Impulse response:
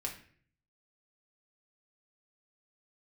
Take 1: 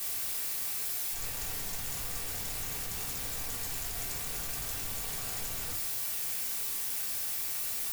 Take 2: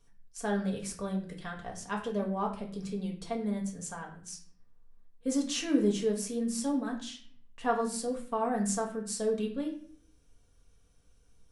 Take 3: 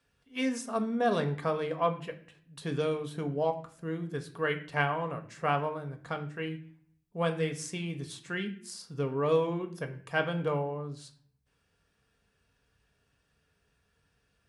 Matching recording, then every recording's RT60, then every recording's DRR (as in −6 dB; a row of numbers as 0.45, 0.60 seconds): 2; 0.50, 0.50, 0.50 seconds; −6.0, −1.0, 5.0 decibels